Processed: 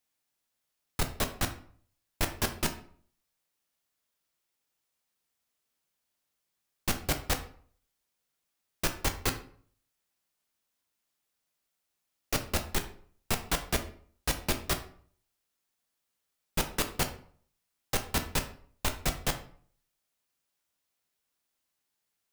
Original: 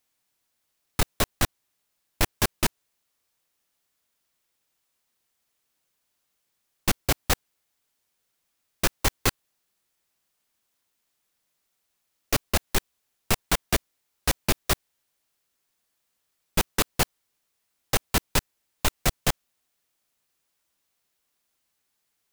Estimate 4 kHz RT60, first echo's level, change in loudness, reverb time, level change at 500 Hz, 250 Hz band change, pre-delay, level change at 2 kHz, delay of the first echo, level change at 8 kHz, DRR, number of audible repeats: 0.35 s, no echo, -6.0 dB, 0.50 s, -5.5 dB, -5.0 dB, 8 ms, -5.5 dB, no echo, -6.0 dB, 6.0 dB, no echo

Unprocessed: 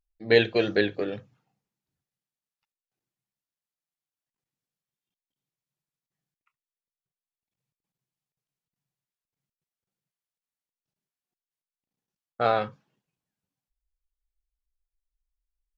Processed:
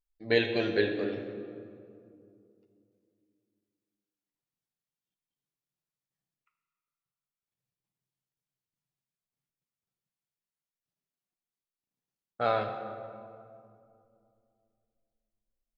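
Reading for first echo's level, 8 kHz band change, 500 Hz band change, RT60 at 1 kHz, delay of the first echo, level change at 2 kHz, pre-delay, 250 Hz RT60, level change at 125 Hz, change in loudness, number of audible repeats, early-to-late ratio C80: no echo, no reading, -4.5 dB, 2.2 s, no echo, -4.5 dB, 7 ms, 3.3 s, -4.0 dB, -5.5 dB, no echo, 8.0 dB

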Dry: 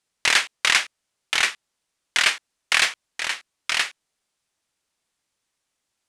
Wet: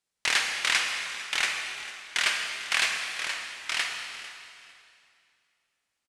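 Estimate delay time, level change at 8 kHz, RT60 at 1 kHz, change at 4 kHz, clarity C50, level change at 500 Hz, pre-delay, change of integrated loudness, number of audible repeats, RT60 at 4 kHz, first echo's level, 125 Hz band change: 448 ms, -5.0 dB, 2.4 s, -5.0 dB, 2.5 dB, -5.0 dB, 28 ms, -6.0 dB, 2, 2.3 s, -17.5 dB, no reading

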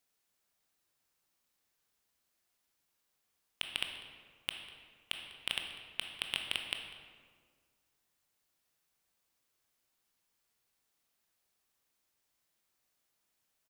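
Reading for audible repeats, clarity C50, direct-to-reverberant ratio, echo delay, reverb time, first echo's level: 1, 5.0 dB, 3.5 dB, 197 ms, 1.8 s, -18.5 dB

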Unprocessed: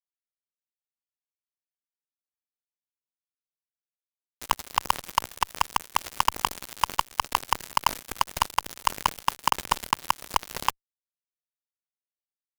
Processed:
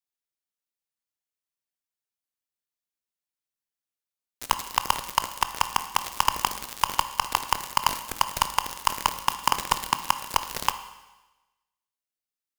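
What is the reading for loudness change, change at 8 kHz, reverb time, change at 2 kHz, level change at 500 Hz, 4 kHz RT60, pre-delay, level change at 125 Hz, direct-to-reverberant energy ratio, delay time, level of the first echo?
+1.5 dB, +3.0 dB, 1.1 s, +1.5 dB, +0.5 dB, 1.1 s, 18 ms, +0.5 dB, 9.5 dB, no echo, no echo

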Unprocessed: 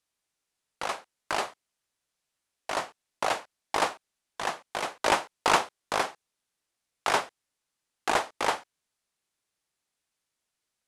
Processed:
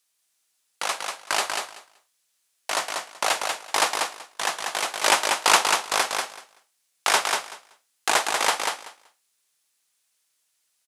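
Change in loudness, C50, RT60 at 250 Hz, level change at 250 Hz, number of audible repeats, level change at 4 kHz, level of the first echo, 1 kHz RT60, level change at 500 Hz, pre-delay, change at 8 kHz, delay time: +6.0 dB, no reverb, no reverb, -1.0 dB, 2, +10.0 dB, -4.5 dB, no reverb, +2.0 dB, no reverb, +13.0 dB, 190 ms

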